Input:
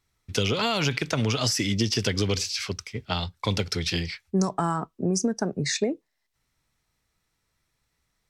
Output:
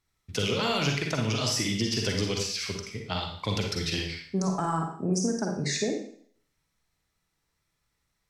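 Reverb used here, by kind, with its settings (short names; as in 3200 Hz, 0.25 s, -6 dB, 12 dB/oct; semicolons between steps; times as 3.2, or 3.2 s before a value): Schroeder reverb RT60 0.57 s, DRR 1.5 dB; gain -4.5 dB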